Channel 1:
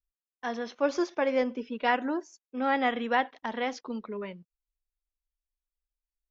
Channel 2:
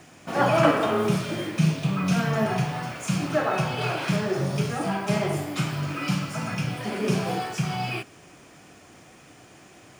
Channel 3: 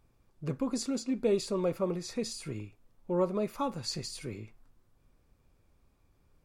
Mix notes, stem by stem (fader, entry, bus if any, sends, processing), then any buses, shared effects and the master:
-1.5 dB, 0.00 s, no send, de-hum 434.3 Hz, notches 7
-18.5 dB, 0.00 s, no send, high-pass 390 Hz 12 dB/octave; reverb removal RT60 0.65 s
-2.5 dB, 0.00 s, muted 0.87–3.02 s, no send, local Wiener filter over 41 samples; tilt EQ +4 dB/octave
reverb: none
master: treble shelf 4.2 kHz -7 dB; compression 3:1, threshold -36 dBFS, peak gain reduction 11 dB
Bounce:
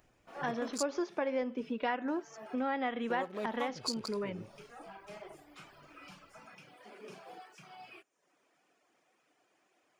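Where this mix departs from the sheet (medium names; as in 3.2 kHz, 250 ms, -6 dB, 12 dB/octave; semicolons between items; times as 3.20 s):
stem 1 -1.5 dB -> +8.5 dB; stem 3 -2.5 dB -> +8.5 dB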